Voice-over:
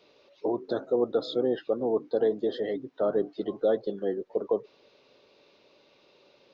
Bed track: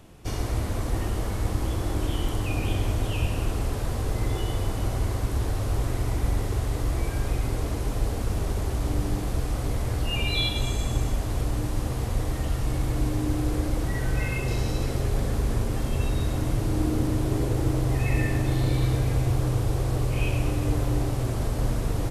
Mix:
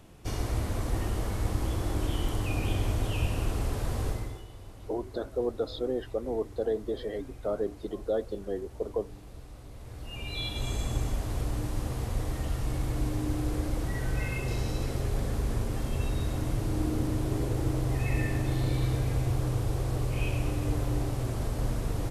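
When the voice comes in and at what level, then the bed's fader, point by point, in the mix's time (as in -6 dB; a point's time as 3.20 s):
4.45 s, -4.5 dB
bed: 4.08 s -3 dB
4.48 s -19.5 dB
9.71 s -19.5 dB
10.74 s -4.5 dB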